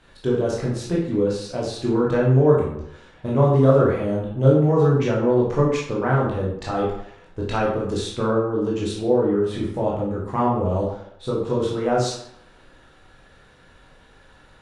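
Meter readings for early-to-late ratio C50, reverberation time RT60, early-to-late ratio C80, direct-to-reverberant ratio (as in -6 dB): 2.5 dB, 0.70 s, 6.5 dB, -5.0 dB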